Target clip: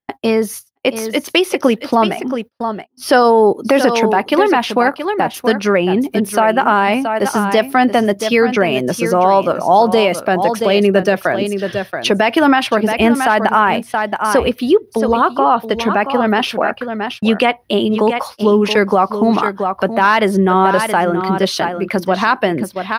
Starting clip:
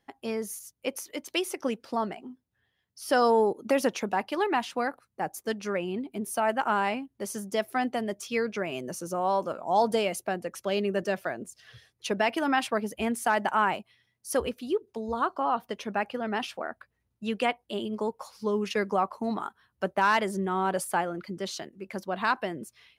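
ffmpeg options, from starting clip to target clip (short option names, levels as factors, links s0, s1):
-filter_complex "[0:a]acrossover=split=7500[s0][s1];[s1]acompressor=threshold=0.00447:ratio=4:attack=1:release=60[s2];[s0][s2]amix=inputs=2:normalize=0,equalizer=f=7300:w=2.6:g=-13,aecho=1:1:675:0.282,agate=range=0.0141:threshold=0.00447:ratio=16:detection=peak,asplit=2[s3][s4];[s4]acompressor=threshold=0.0178:ratio=6,volume=1.12[s5];[s3][s5]amix=inputs=2:normalize=0,alimiter=level_in=5.62:limit=0.891:release=50:level=0:latency=1,volume=0.891"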